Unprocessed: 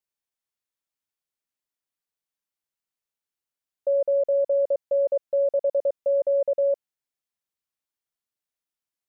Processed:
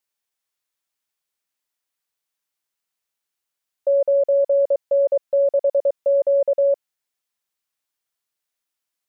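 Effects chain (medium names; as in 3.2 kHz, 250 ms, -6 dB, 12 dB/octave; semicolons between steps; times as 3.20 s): bass shelf 450 Hz -7.5 dB; trim +7.5 dB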